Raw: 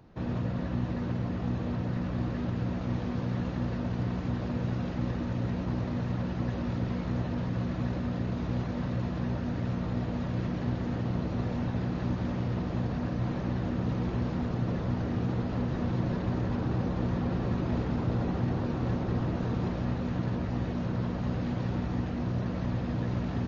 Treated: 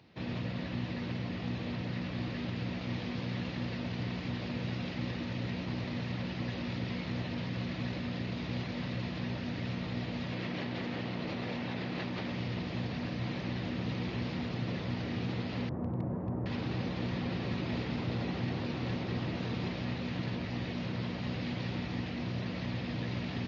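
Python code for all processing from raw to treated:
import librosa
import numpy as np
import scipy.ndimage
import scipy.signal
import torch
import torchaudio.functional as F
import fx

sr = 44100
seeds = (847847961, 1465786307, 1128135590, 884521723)

y = fx.chain(x, sr, fx.highpass(hz=250.0, slope=6),
    fx.high_shelf(hz=4300.0, db=-7.5),
    fx.env_flatten(amount_pct=100), at=(10.32, 12.31))
y = fx.chain(y, sr, fx.lowpass(hz=1100.0, slope=24),
    fx.peak_eq(hz=79.0, db=5.0, octaves=0.31),
    fx.clip_hard(threshold_db=-20.0), at=(15.69, 16.46))
y = scipy.signal.sosfilt(scipy.signal.butter(2, 93.0, 'highpass', fs=sr, output='sos'), y)
y = fx.band_shelf(y, sr, hz=3200.0, db=11.5, octaves=1.7)
y = F.gain(torch.from_numpy(y), -4.5).numpy()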